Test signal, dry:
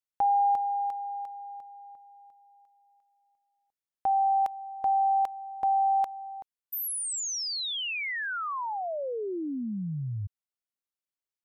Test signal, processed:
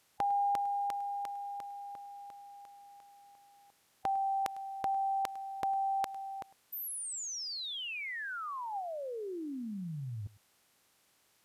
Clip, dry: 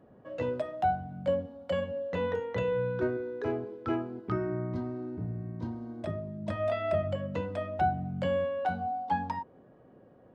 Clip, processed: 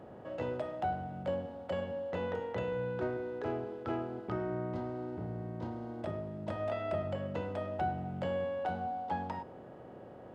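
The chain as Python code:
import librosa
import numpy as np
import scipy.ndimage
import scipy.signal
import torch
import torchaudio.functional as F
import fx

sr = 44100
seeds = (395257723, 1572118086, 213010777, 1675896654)

y = fx.bin_compress(x, sr, power=0.6)
y = y + 10.0 ** (-20.5 / 20.0) * np.pad(y, (int(103 * sr / 1000.0), 0))[:len(y)]
y = F.gain(torch.from_numpy(y), -8.0).numpy()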